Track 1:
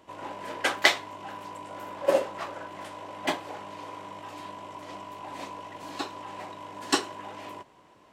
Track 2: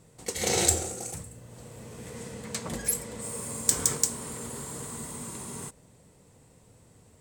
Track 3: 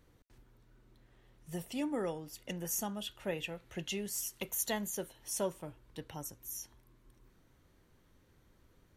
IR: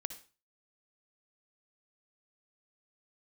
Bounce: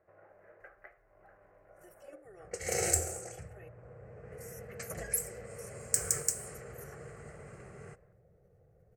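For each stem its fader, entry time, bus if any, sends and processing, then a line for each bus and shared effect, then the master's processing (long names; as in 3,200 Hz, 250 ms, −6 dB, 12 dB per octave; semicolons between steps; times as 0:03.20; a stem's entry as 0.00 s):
−9.0 dB, 0.00 s, no send, low-pass filter 1,800 Hz 24 dB per octave; downward compressor 5 to 1, threshold −43 dBFS, peak gain reduction 22.5 dB
−3.0 dB, 2.25 s, no send, low-pass that shuts in the quiet parts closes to 760 Hz, open at −27.5 dBFS
−10.5 dB, 0.30 s, muted 0:03.69–0:04.32, no send, comb filter 2.7 ms, depth 91%; output level in coarse steps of 10 dB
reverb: not used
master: phaser with its sweep stopped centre 970 Hz, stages 6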